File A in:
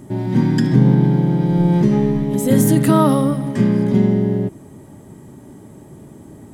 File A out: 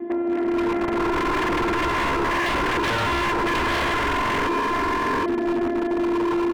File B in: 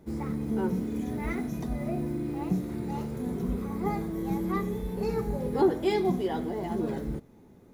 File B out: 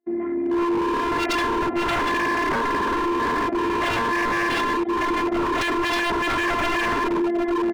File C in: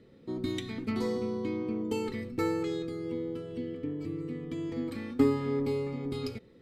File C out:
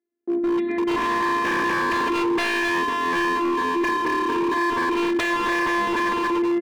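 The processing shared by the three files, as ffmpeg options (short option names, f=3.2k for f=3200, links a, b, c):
-af "aresample=11025,asoftclip=type=hard:threshold=-15dB,aresample=44100,afftfilt=real='hypot(re,im)*cos(PI*b)':imag='0':win_size=512:overlap=0.75,aecho=1:1:4.7:0.33,aecho=1:1:764|1528|2292:0.251|0.0502|0.01,acompressor=threshold=-29dB:ratio=10,aeval=exprs='0.0794*(cos(1*acos(clip(val(0)/0.0794,-1,1)))-cos(1*PI/2))+0.00794*(cos(3*acos(clip(val(0)/0.0794,-1,1)))-cos(3*PI/2))+0.0355*(cos(5*acos(clip(val(0)/0.0794,-1,1)))-cos(5*PI/2))+0.00158*(cos(7*acos(clip(val(0)/0.0794,-1,1)))-cos(7*PI/2))':c=same,agate=range=-36dB:threshold=-45dB:ratio=16:detection=peak,highpass=140,equalizer=f=150:t=q:w=4:g=-5,equalizer=f=230:t=q:w=4:g=8,equalizer=f=340:t=q:w=4:g=7,equalizer=f=760:t=q:w=4:g=5,equalizer=f=1.9k:t=q:w=4:g=8,lowpass=f=2.4k:w=0.5412,lowpass=f=2.4k:w=1.3066,dynaudnorm=f=240:g=7:m=13dB,aeval=exprs='0.133*(abs(mod(val(0)/0.133+3,4)-2)-1)':c=same"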